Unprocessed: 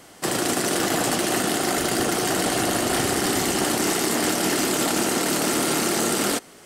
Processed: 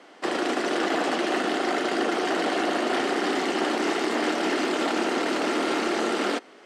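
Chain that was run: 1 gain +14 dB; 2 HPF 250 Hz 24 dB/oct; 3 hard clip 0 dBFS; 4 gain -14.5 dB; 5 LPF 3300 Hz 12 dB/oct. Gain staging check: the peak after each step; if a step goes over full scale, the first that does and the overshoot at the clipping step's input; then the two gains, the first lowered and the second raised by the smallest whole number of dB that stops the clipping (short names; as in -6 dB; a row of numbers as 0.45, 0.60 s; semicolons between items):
+4.5, +5.0, 0.0, -14.5, -14.5 dBFS; step 1, 5.0 dB; step 1 +9 dB, step 4 -9.5 dB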